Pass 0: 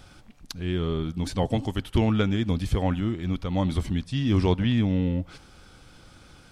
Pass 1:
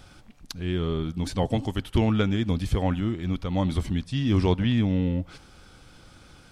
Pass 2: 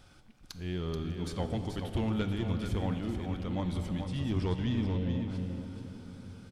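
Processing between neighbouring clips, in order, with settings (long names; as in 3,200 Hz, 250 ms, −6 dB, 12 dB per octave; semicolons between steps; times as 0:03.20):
no processing that can be heard
soft clipping −16.5 dBFS, distortion −17 dB; single-tap delay 432 ms −7 dB; on a send at −7.5 dB: convolution reverb RT60 5.1 s, pre-delay 10 ms; on the sum: level −8 dB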